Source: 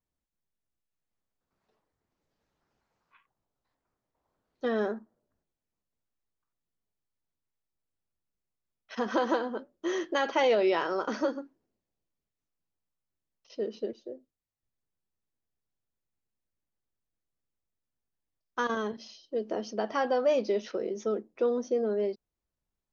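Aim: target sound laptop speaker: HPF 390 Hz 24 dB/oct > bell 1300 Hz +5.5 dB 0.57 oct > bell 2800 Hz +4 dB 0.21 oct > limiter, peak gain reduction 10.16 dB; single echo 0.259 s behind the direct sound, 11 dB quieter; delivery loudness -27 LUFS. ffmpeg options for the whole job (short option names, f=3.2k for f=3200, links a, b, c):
-af "highpass=f=390:w=0.5412,highpass=f=390:w=1.3066,equalizer=f=1.3k:t=o:w=0.57:g=5.5,equalizer=f=2.8k:t=o:w=0.21:g=4,aecho=1:1:259:0.282,volume=8dB,alimiter=limit=-16.5dB:level=0:latency=1"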